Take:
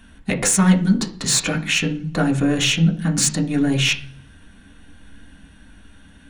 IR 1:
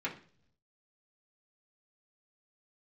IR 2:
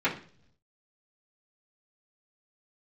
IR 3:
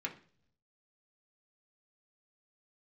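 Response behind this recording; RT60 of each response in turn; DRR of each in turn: 3; 0.50, 0.50, 0.50 seconds; −6.0, −11.0, −1.0 decibels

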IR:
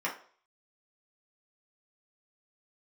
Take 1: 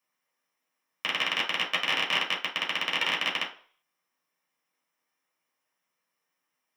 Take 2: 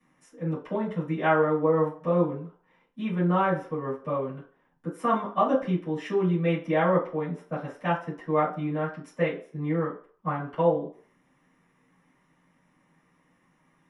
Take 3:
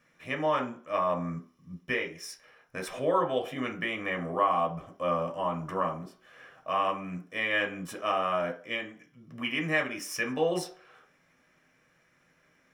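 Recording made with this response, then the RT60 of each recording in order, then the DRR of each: 1; 0.45, 0.45, 0.45 seconds; −5.0, −13.5, 1.5 decibels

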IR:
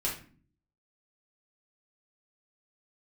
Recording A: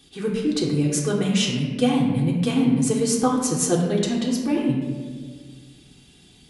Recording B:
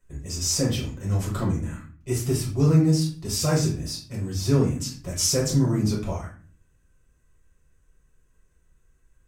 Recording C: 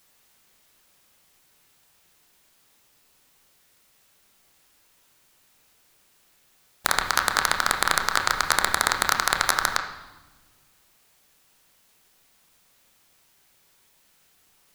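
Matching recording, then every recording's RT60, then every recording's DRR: B; 1.6, 0.45, 1.2 seconds; −3.0, −5.0, 3.5 decibels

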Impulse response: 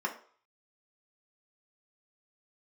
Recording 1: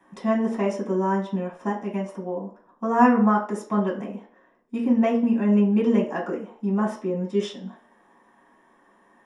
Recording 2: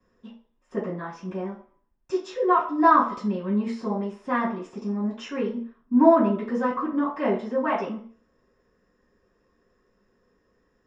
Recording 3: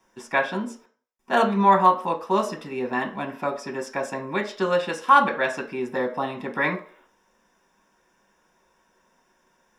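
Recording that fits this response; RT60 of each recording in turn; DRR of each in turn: 3; 0.50, 0.50, 0.50 seconds; −4.5, −12.0, 2.0 decibels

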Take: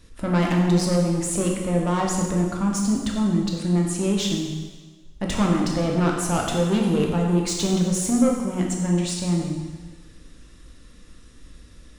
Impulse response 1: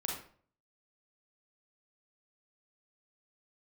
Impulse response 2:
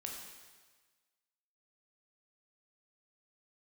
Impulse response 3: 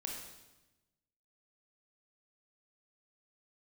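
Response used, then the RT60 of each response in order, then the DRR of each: 2; 0.50, 1.4, 1.0 seconds; −2.0, −0.5, −0.5 decibels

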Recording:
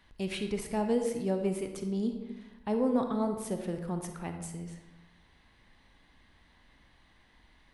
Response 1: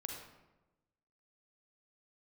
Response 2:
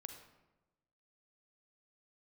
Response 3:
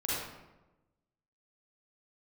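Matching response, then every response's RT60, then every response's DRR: 2; 1.1, 1.1, 1.1 seconds; 1.0, 5.5, −8.0 decibels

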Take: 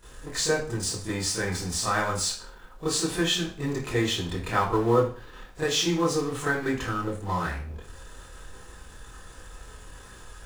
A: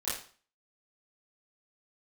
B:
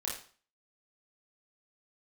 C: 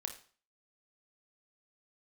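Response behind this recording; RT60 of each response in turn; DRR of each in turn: A; 0.45, 0.45, 0.45 seconds; −14.0, −5.0, 4.5 decibels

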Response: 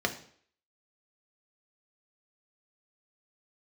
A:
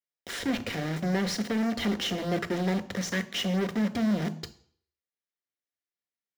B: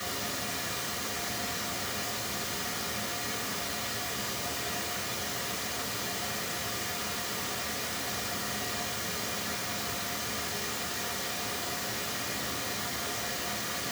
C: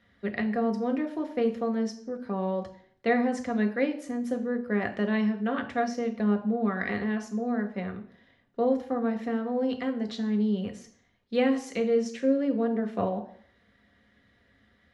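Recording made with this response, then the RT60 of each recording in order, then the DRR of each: C; 0.55, 0.55, 0.55 seconds; 9.0, −5.5, 3.5 decibels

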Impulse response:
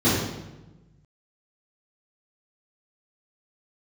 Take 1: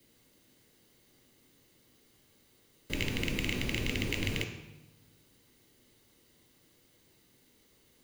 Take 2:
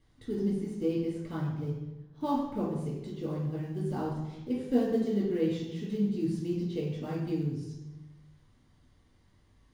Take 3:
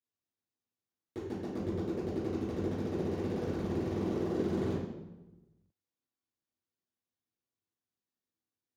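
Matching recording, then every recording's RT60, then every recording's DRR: 3; 1.1, 1.1, 1.1 seconds; 5.0, −4.5, −13.5 decibels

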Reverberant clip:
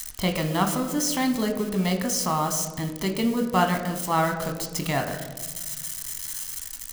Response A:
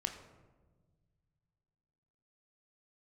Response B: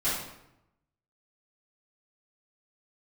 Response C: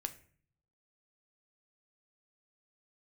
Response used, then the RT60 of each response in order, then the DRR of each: A; 1.4, 0.85, 0.50 seconds; 4.0, −14.5, 7.5 decibels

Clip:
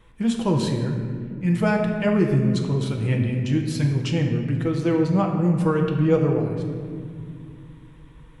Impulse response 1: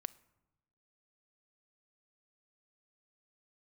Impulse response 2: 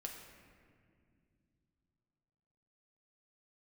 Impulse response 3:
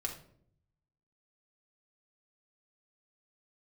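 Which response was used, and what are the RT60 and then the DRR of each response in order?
2; 1.0, 2.3, 0.65 seconds; 18.0, 0.5, −0.5 decibels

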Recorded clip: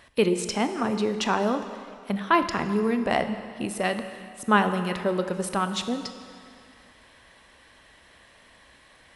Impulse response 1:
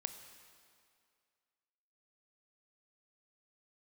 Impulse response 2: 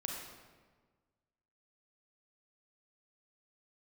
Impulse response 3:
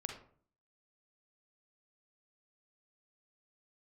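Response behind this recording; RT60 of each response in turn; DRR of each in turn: 1; 2.3, 1.5, 0.50 seconds; 8.5, −0.5, 3.0 decibels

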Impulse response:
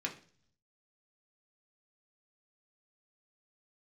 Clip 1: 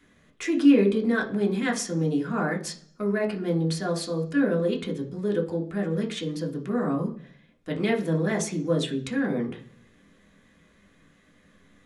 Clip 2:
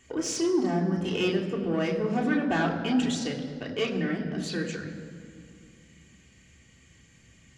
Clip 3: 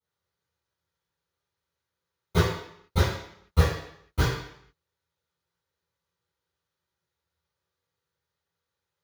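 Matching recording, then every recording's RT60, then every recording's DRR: 1; 0.45, 2.2, 0.70 seconds; −0.5, −2.0, −17.5 decibels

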